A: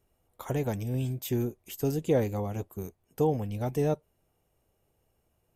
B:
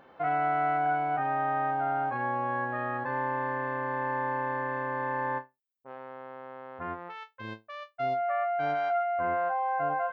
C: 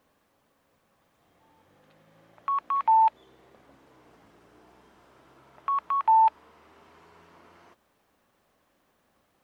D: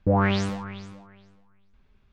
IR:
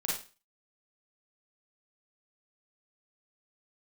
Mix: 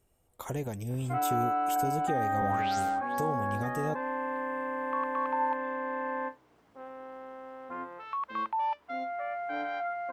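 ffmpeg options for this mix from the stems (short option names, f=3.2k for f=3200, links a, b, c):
-filter_complex "[0:a]volume=1dB,asplit=2[a][b];[1:a]lowshelf=f=180:t=q:w=1.5:g=-11,aecho=1:1:3.8:0.79,adelay=900,volume=-5.5dB[c];[2:a]alimiter=limit=-19dB:level=0:latency=1:release=169,adelay=2450,volume=-7dB[d];[3:a]crystalizer=i=6.5:c=0,adelay=2350,volume=-10.5dB[e];[b]apad=whole_len=197443[f];[e][f]sidechaingate=range=-10dB:threshold=-52dB:ratio=16:detection=peak[g];[a][g]amix=inputs=2:normalize=0,equalizer=f=8.1k:w=3.8:g=8,alimiter=level_in=1dB:limit=-24dB:level=0:latency=1:release=413,volume=-1dB,volume=0dB[h];[c][d][h]amix=inputs=3:normalize=0"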